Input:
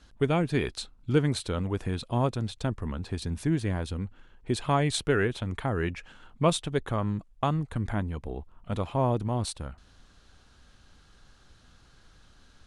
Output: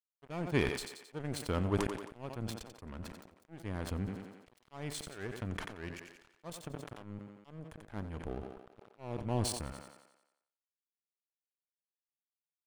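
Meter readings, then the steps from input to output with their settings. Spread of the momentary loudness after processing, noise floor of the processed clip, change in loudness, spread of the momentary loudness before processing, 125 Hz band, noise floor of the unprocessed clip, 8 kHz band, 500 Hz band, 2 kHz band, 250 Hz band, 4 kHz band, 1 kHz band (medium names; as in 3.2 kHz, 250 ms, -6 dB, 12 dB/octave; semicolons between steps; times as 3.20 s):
18 LU, under -85 dBFS, -10.0 dB, 11 LU, -11.5 dB, -59 dBFS, -6.0 dB, -10.5 dB, -8.5 dB, -10.0 dB, -9.0 dB, -12.5 dB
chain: band-stop 3.8 kHz, Q 5.8; slow attack 503 ms; power-law waveshaper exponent 1.4; crossover distortion -55.5 dBFS; on a send: thinning echo 89 ms, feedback 45%, high-pass 200 Hz, level -13.5 dB; on the sum: decay stretcher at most 63 dB/s; trim +1.5 dB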